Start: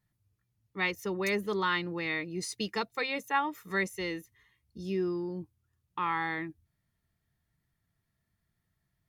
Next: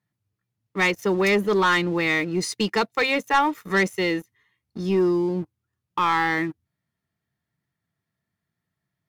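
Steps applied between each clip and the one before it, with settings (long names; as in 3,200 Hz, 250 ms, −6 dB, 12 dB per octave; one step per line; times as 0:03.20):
high-pass filter 130 Hz 12 dB per octave
high-shelf EQ 5,400 Hz −7.5 dB
leveller curve on the samples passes 2
level +5 dB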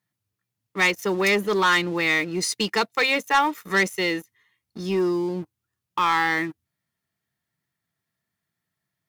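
spectral tilt +1.5 dB per octave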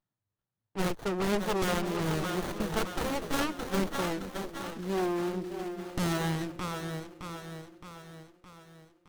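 phase distortion by the signal itself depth 0.96 ms
echo with a time of its own for lows and highs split 370 Hz, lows 430 ms, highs 616 ms, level −7.5 dB
windowed peak hold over 17 samples
level −6 dB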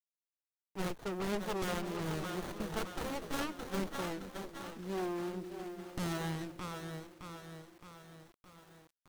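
bit reduction 9 bits
level −7 dB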